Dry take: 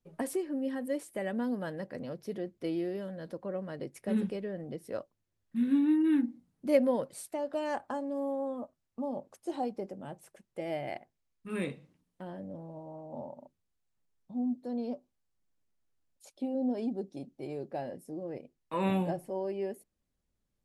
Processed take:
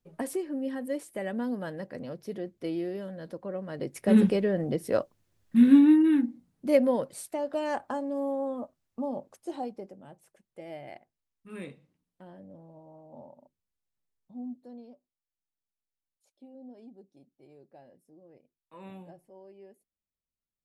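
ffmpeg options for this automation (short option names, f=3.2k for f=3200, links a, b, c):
-af "volume=11dB,afade=t=in:st=3.66:d=0.56:silence=0.316228,afade=t=out:st=5.64:d=0.49:silence=0.398107,afade=t=out:st=9.03:d=0.99:silence=0.334965,afade=t=out:st=14.49:d=0.45:silence=0.316228"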